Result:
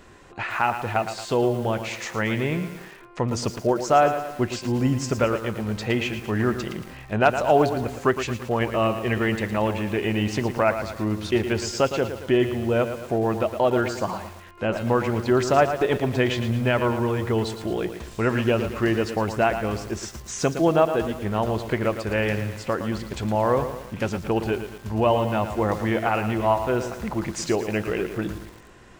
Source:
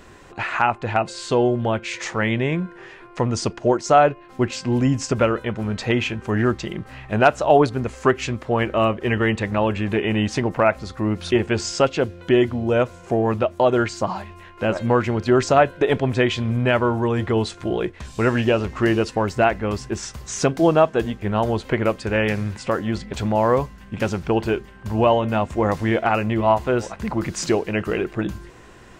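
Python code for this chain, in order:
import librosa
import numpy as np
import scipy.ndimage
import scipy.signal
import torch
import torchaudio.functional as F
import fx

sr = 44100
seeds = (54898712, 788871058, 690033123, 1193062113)

y = fx.echo_crushed(x, sr, ms=113, feedback_pct=55, bits=6, wet_db=-9)
y = y * 10.0 ** (-3.5 / 20.0)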